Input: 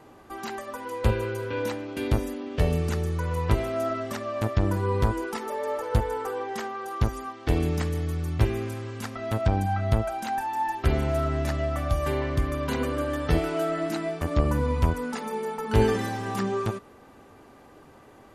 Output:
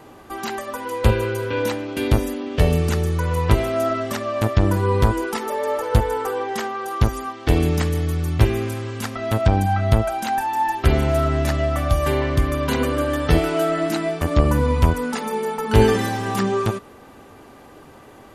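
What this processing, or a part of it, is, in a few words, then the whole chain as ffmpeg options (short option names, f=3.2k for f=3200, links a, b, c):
presence and air boost: -af "equalizer=f=3.2k:t=o:w=0.77:g=2,highshelf=f=10k:g=5,volume=6.5dB"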